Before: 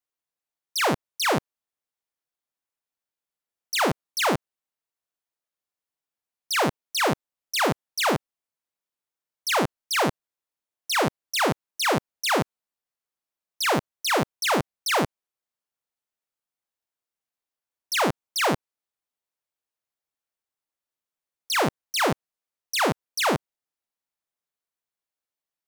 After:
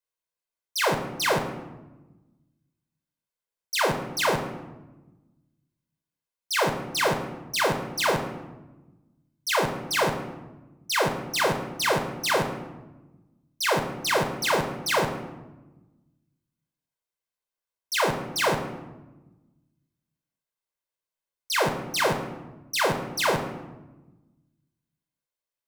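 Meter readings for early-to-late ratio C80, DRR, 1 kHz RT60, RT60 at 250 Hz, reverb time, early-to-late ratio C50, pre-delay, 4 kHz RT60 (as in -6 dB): 11.5 dB, 5.0 dB, 1.1 s, 1.7 s, 1.1 s, 8.5 dB, 5 ms, 0.70 s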